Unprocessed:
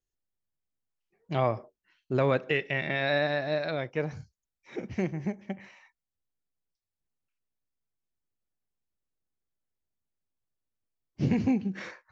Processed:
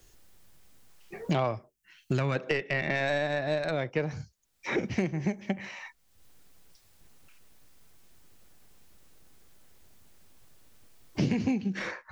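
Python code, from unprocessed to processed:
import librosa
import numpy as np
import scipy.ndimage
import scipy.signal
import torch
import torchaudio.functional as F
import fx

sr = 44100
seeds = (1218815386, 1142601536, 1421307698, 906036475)

y = fx.tracing_dist(x, sr, depth_ms=0.051)
y = fx.graphic_eq(y, sr, hz=(125, 250, 500, 1000, 4000), db=(3, -4, -10, -5, -7), at=(1.55, 2.35), fade=0.02)
y = fx.band_squash(y, sr, depth_pct=100)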